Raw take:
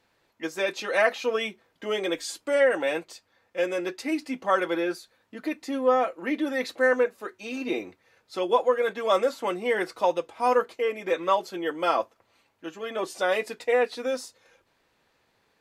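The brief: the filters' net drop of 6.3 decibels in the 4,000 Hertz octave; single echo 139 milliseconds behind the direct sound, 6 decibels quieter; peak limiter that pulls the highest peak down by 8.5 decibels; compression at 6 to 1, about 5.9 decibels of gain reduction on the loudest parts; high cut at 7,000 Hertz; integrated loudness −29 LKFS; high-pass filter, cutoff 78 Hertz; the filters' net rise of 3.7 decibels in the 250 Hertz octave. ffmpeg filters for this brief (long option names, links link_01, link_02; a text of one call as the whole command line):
ffmpeg -i in.wav -af "highpass=78,lowpass=7000,equalizer=frequency=250:width_type=o:gain=5,equalizer=frequency=4000:width_type=o:gain=-8,acompressor=threshold=-22dB:ratio=6,alimiter=limit=-22dB:level=0:latency=1,aecho=1:1:139:0.501,volume=2dB" out.wav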